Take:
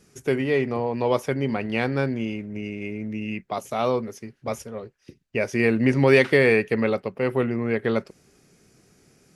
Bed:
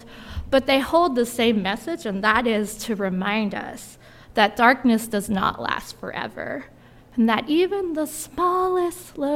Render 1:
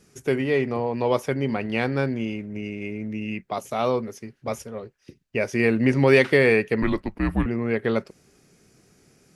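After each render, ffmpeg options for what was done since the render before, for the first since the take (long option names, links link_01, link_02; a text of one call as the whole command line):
ffmpeg -i in.wav -filter_complex "[0:a]asettb=1/sr,asplit=3[link_01][link_02][link_03];[link_01]atrim=end=6.824[link_04];[link_02]atrim=start=6.82:end=7.46,asetpts=PTS-STARTPTS,afade=type=in:duration=0.004:curve=qsin,afade=type=out:start_time=0.636:duration=0.004:curve=qsin,afreqshift=-200[link_05];[link_03]atrim=start=7.456[link_06];[link_04][link_05]acrossfade=duration=0.004:curve1=hsin:curve2=qsin[link_07];[link_07][link_06]acrossfade=duration=0.004:curve1=qsin:curve2=hsin" out.wav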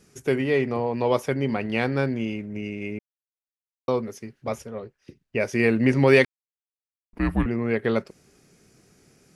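ffmpeg -i in.wav -filter_complex "[0:a]asettb=1/sr,asplit=3[link_01][link_02][link_03];[link_01]atrim=end=4.484[link_04];[link_02]atrim=start=4.48:end=5.4,asetpts=PTS-STARTPTS,afade=type=in:duration=0.004:curve=qsin,afade=type=out:start_time=0.916:duration=0.004:curve=qsin,highshelf=frequency=4500:gain=-6[link_05];[link_03]atrim=start=5.396[link_06];[link_04][link_05]acrossfade=duration=0.004:curve1=hsin:curve2=qsin[link_07];[link_07][link_06]acrossfade=duration=0.004:curve1=qsin:curve2=hsin,asplit=5[link_08][link_09][link_10][link_11][link_12];[link_08]atrim=end=2.99,asetpts=PTS-STARTPTS,afade=type=out:start_time=2.986:duration=0.004:curve=hsin[link_13];[link_09]atrim=start=2.99:end=3.88,asetpts=PTS-STARTPTS,volume=0[link_14];[link_10]atrim=start=3.88:end=6.25,asetpts=PTS-STARTPTS,afade=type=in:duration=0.004:curve=hsin,afade=type=out:start_time=2.366:duration=0.004:curve=hsin[link_15];[link_11]atrim=start=6.25:end=7.13,asetpts=PTS-STARTPTS,volume=0[link_16];[link_12]atrim=start=7.13,asetpts=PTS-STARTPTS,afade=type=in:duration=0.004:curve=hsin[link_17];[link_13][link_14][link_15][link_16][link_17]concat=n=5:v=0:a=1" out.wav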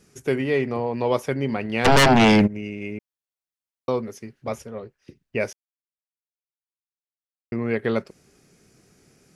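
ffmpeg -i in.wav -filter_complex "[0:a]asplit=3[link_01][link_02][link_03];[link_01]afade=type=out:start_time=1.84:duration=0.02[link_04];[link_02]aeval=exprs='0.299*sin(PI/2*7.08*val(0)/0.299)':channel_layout=same,afade=type=in:start_time=1.84:duration=0.02,afade=type=out:start_time=2.46:duration=0.02[link_05];[link_03]afade=type=in:start_time=2.46:duration=0.02[link_06];[link_04][link_05][link_06]amix=inputs=3:normalize=0,asplit=3[link_07][link_08][link_09];[link_07]atrim=end=5.53,asetpts=PTS-STARTPTS,afade=type=out:start_time=5.526:duration=0.004:curve=hsin[link_10];[link_08]atrim=start=5.53:end=7.52,asetpts=PTS-STARTPTS,volume=0[link_11];[link_09]atrim=start=7.52,asetpts=PTS-STARTPTS,afade=type=in:duration=0.004:curve=hsin[link_12];[link_10][link_11][link_12]concat=n=3:v=0:a=1" out.wav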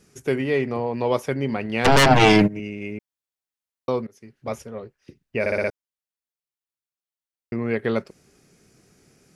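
ffmpeg -i in.wav -filter_complex "[0:a]asettb=1/sr,asplit=3[link_01][link_02][link_03];[link_01]atrim=end=2.104[link_04];[link_02]atrim=start=2.1:end=2.6,asetpts=PTS-STARTPTS,afade=type=in:duration=0.004:curve=qsin,afade=type=out:start_time=0.496:duration=0.004:curve=qsin,aecho=1:1:6.5:0.84,atrim=end_sample=22050[link_05];[link_03]atrim=start=2.596[link_06];[link_04][link_05]acrossfade=duration=0.004:curve1=hsin:curve2=qsin[link_07];[link_07][link_06]acrossfade=duration=0.004:curve1=qsin:curve2=hsin,asplit=7[link_08][link_09][link_10][link_11][link_12][link_13][link_14];[link_08]atrim=end=4.07,asetpts=PTS-STARTPTS,afade=type=out:start_time=4.066:duration=0.004:curve=hsin:silence=0.0841395[link_15];[link_09]atrim=start=4.07:end=5.462,asetpts=PTS-STARTPTS,afade=type=in:duration=0.45:silence=0.0841395[link_16];[link_10]atrim=start=5.398:end=5.462[link_17];[link_11]atrim=start=5.398:end=5.462[link_18];[link_12]atrim=start=5.398:end=5.462[link_19];[link_13]atrim=start=5.398:end=5.462[link_20];[link_14]atrim=start=5.698[link_21];[link_15][link_16]concat=n=2:v=0:a=1[link_22];[link_22][link_17]acrossfade=duration=0.004:curve1=hsin:curve2=hsin[link_23];[link_23][link_18]acrossfade=duration=0.004:curve1=hsin:curve2=hsin[link_24];[link_24][link_19]acrossfade=duration=0.004:curve1=hsin:curve2=hsin[link_25];[link_25][link_20]acrossfade=duration=0.004:curve1=hsin:curve2=hsin[link_26];[link_26][link_21]acrossfade=duration=0.004:curve1=hsin:curve2=hsin" out.wav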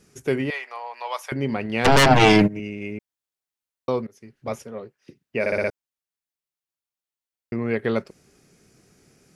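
ffmpeg -i in.wav -filter_complex "[0:a]asettb=1/sr,asplit=3[link_01][link_02][link_03];[link_01]atrim=end=0.504[link_04];[link_02]atrim=start=0.5:end=1.32,asetpts=PTS-STARTPTS,afade=type=in:duration=0.004:curve=qsin,afade=type=out:start_time=0.816:duration=0.004:curve=qsin,highpass=frequency=800:width=0.5412,highpass=frequency=800:width=1.3066[link_05];[link_03]atrim=start=1.316[link_06];[link_04][link_05]acrossfade=duration=0.004:curve1=hsin:curve2=qsin[link_07];[link_07][link_06]acrossfade=duration=0.004:curve1=qsin:curve2=hsin,asettb=1/sr,asplit=3[link_08][link_09][link_10];[link_08]atrim=end=4.564[link_11];[link_09]atrim=start=4.56:end=5.53,asetpts=PTS-STARTPTS,afade=type=in:duration=0.004:curve=qsin,afade=type=out:start_time=0.966:duration=0.004:curve=qsin,highpass=130[link_12];[link_10]atrim=start=5.526[link_13];[link_11][link_12]acrossfade=duration=0.004:curve1=hsin:curve2=qsin[link_14];[link_14][link_13]acrossfade=duration=0.004:curve1=qsin:curve2=hsin" out.wav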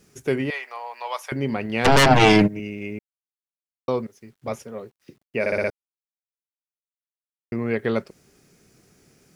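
ffmpeg -i in.wav -af "acrusher=bits=10:mix=0:aa=0.000001" out.wav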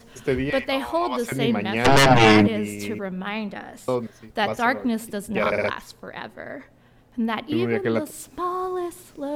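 ffmpeg -i in.wav -i bed.wav -filter_complex "[1:a]volume=-6dB[link_01];[0:a][link_01]amix=inputs=2:normalize=0" out.wav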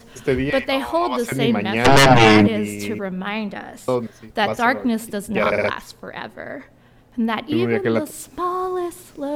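ffmpeg -i in.wav -af "volume=3.5dB,alimiter=limit=-2dB:level=0:latency=1" out.wav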